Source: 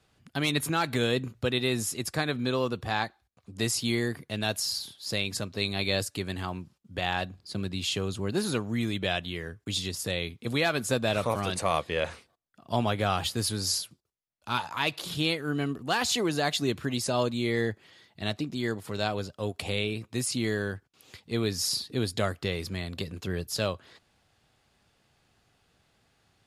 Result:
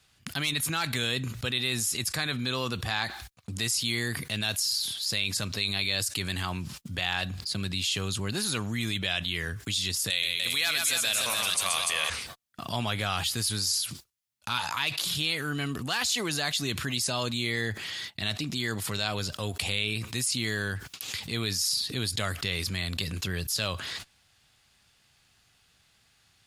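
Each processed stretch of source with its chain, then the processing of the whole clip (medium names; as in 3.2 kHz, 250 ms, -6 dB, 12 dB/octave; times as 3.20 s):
10.10–12.10 s: tilt EQ +3.5 dB/octave + multi-tap echo 129/294 ms -6.5/-6 dB
whole clip: gate -57 dBFS, range -28 dB; amplifier tone stack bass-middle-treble 5-5-5; level flattener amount 70%; trim +2 dB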